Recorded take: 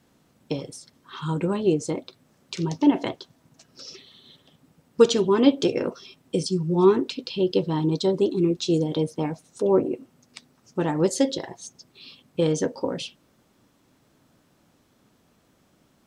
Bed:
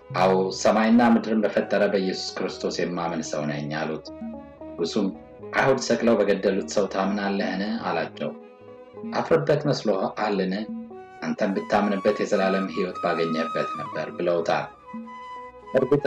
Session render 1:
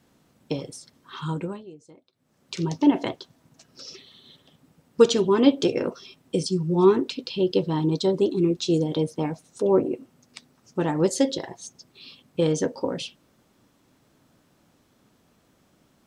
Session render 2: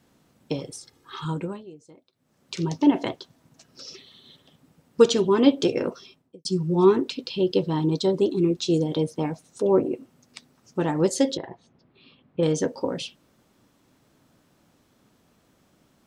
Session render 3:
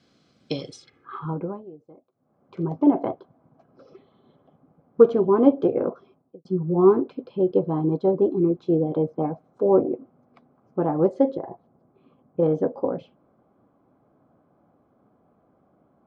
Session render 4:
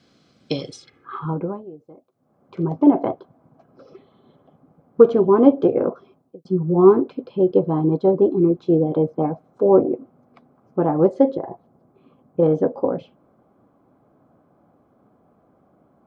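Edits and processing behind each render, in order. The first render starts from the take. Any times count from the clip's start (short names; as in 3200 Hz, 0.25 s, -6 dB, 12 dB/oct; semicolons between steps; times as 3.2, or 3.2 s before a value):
1.22–2.56 dip -23 dB, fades 0.44 s
0.71–1.25 comb 2.4 ms; 5.95–6.45 studio fade out; 11.37–12.43 air absorption 460 m
notch comb 920 Hz; low-pass sweep 4600 Hz -> 890 Hz, 0.7–1.22
gain +4 dB; limiter -1 dBFS, peak gain reduction 2 dB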